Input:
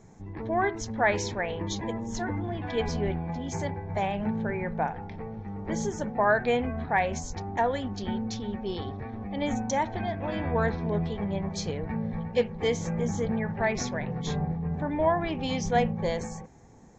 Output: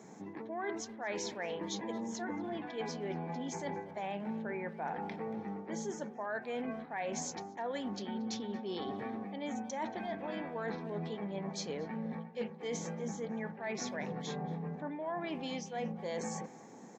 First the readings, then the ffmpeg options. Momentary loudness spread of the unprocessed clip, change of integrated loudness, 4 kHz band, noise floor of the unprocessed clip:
8 LU, −10.0 dB, −7.0 dB, −40 dBFS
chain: -filter_complex "[0:a]highpass=frequency=190:width=0.5412,highpass=frequency=190:width=1.3066,areverse,acompressor=threshold=-39dB:ratio=12,areverse,asplit=2[link_01][link_02];[link_02]adelay=230,highpass=300,lowpass=3400,asoftclip=type=hard:threshold=-40dB,volume=-16dB[link_03];[link_01][link_03]amix=inputs=2:normalize=0,volume=3.5dB"

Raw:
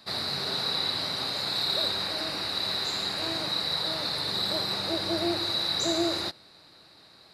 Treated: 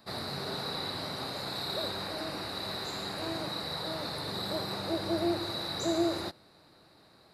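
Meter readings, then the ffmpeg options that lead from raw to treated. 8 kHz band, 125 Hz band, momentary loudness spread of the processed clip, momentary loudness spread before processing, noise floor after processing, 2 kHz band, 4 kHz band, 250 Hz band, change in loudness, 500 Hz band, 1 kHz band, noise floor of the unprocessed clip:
−6.5 dB, 0.0 dB, 6 LU, 3 LU, −60 dBFS, −5.5 dB, −9.5 dB, −0.5 dB, −6.5 dB, −1.0 dB, −2.0 dB, −55 dBFS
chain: -af "equalizer=frequency=4100:width_type=o:width=2.6:gain=-9.5"

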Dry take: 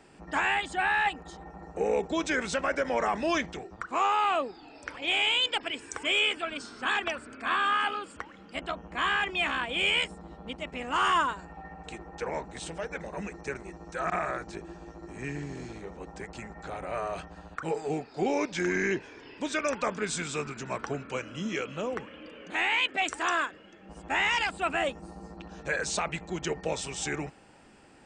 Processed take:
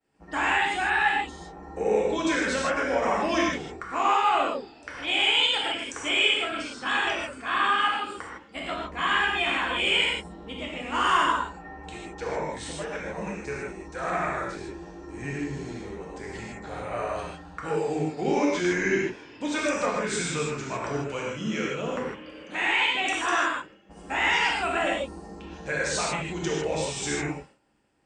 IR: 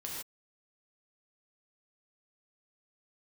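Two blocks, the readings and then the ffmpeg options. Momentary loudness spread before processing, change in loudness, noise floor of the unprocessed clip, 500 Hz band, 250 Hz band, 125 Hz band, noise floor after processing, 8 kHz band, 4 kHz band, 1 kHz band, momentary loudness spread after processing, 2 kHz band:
17 LU, +3.5 dB, −52 dBFS, +4.0 dB, +4.5 dB, +4.5 dB, −48 dBFS, +3.5 dB, +4.0 dB, +3.5 dB, 16 LU, +3.5 dB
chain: -filter_complex "[0:a]agate=range=-33dB:threshold=-44dB:ratio=3:detection=peak,acontrast=48[link_01];[1:a]atrim=start_sample=2205[link_02];[link_01][link_02]afir=irnorm=-1:irlink=0,volume=-2.5dB"

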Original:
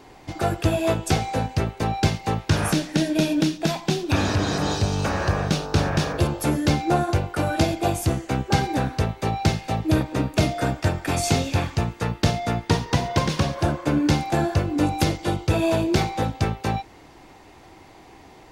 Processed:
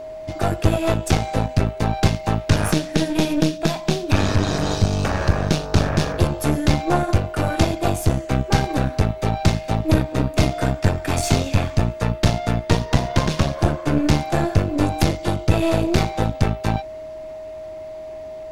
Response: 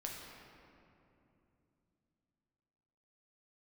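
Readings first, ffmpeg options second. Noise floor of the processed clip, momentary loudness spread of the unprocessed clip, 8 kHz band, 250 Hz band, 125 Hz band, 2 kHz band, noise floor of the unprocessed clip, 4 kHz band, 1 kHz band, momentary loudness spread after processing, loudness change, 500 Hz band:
−34 dBFS, 4 LU, +1.0 dB, +2.0 dB, +3.5 dB, +1.0 dB, −48 dBFS, +1.0 dB, +1.0 dB, 5 LU, +2.5 dB, +2.5 dB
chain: -af "lowshelf=frequency=87:gain=8.5,aeval=exprs='0.75*(cos(1*acos(clip(val(0)/0.75,-1,1)))-cos(1*PI/2))+0.106*(cos(6*acos(clip(val(0)/0.75,-1,1)))-cos(6*PI/2))':channel_layout=same,aeval=exprs='val(0)+0.0282*sin(2*PI*630*n/s)':channel_layout=same"

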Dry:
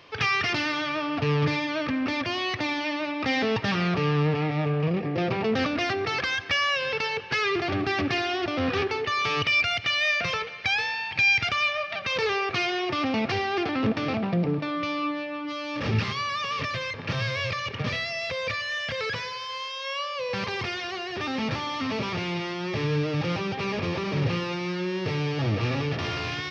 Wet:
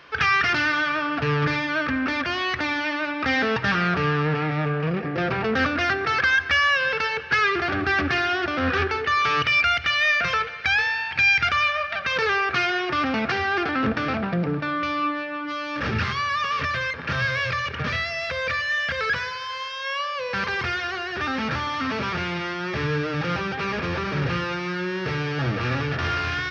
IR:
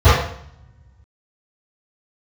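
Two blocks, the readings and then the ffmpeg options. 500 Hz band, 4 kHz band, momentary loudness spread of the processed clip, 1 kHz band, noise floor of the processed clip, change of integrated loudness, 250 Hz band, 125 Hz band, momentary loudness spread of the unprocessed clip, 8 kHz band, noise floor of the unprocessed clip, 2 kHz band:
+0.5 dB, +1.0 dB, 8 LU, +5.0 dB, −32 dBFS, +3.5 dB, +0.5 dB, +0.5 dB, 7 LU, can't be measured, −35 dBFS, +6.0 dB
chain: -filter_complex "[0:a]equalizer=frequency=1500:width_type=o:width=0.56:gain=13,asplit=2[link_01][link_02];[1:a]atrim=start_sample=2205,lowshelf=frequency=75:gain=10[link_03];[link_02][link_03]afir=irnorm=-1:irlink=0,volume=-46.5dB[link_04];[link_01][link_04]amix=inputs=2:normalize=0"

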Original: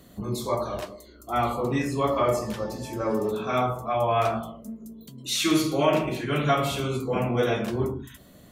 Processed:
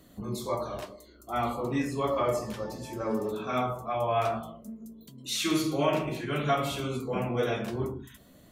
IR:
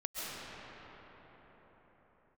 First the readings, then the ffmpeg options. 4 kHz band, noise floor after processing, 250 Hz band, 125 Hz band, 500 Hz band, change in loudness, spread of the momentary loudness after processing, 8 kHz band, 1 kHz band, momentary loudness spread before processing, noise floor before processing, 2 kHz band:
−4.5 dB, −55 dBFS, −4.0 dB, −5.0 dB, −4.5 dB, −4.5 dB, 16 LU, −4.5 dB, −4.5 dB, 15 LU, −51 dBFS, −4.5 dB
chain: -af "flanger=delay=3:depth=4.6:regen=76:speed=0.59:shape=triangular"

